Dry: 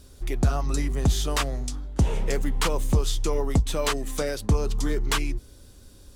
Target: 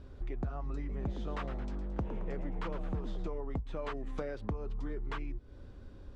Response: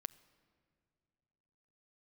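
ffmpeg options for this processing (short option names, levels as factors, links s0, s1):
-filter_complex "[0:a]lowpass=1800,acompressor=threshold=0.0178:ratio=6,asettb=1/sr,asplit=3[s0][s1][s2];[s0]atrim=end=0.784[s3];[s1]atrim=start=0.78:end=3.28,asetpts=PTS-STARTPTS,afade=t=in:d=0.004:c=qsin,afade=t=out:st=2.496:d=0.004:c=qsin,asplit=7[s4][s5][s6][s7][s8][s9][s10];[s5]adelay=110,afreqshift=150,volume=0.282[s11];[s6]adelay=220,afreqshift=300,volume=0.15[s12];[s7]adelay=330,afreqshift=450,volume=0.0794[s13];[s8]adelay=440,afreqshift=600,volume=0.0422[s14];[s9]adelay=550,afreqshift=750,volume=0.0221[s15];[s10]adelay=660,afreqshift=900,volume=0.0117[s16];[s4][s11][s12][s13][s14][s15][s16]amix=inputs=7:normalize=0,atrim=end_sample=110250[s17];[s2]atrim=start=3.276[s18];[s3][s17]acrossfade=d=0.004:c1=hsin:c2=qsin[s19];[s19][s18]acrossfade=d=0.004:c1=qsin:c2=hsin"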